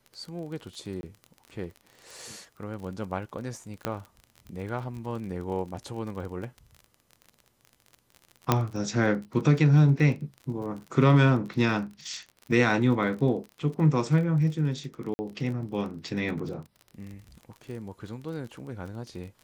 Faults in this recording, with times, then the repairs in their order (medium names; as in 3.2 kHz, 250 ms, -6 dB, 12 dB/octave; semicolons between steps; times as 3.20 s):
crackle 32 per s -36 dBFS
1.01–1.03 s: dropout 21 ms
3.85 s: pop -13 dBFS
8.52 s: pop -6 dBFS
15.14–15.19 s: dropout 50 ms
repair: de-click; interpolate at 1.01 s, 21 ms; interpolate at 15.14 s, 50 ms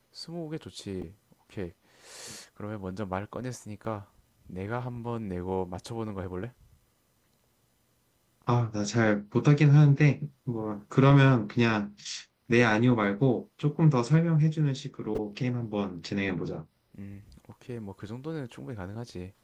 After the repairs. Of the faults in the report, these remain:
3.85 s: pop